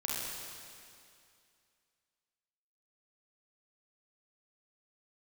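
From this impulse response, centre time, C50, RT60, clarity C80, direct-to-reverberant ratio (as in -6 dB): 0.153 s, -3.0 dB, 2.4 s, -1.0 dB, -5.5 dB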